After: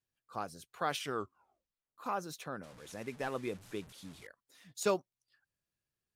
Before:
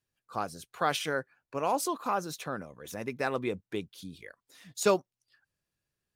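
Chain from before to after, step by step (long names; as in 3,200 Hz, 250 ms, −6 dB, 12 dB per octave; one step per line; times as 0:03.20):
0:01.00: tape stop 0.98 s
0:02.63–0:04.27: linear delta modulator 64 kbit/s, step −43.5 dBFS
level −6 dB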